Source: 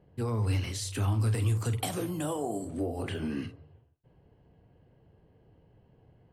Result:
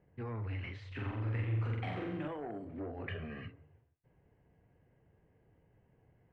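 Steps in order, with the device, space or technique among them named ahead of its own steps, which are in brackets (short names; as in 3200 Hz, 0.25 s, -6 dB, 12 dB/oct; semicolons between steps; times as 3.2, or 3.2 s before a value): overdriven synthesiser ladder filter (soft clip -27 dBFS, distortion -14 dB; ladder low-pass 2500 Hz, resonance 50%); 0.87–2.28 flutter echo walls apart 7.6 m, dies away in 0.92 s; 3.07–3.48 comb 1.7 ms, depth 84%; gain +2 dB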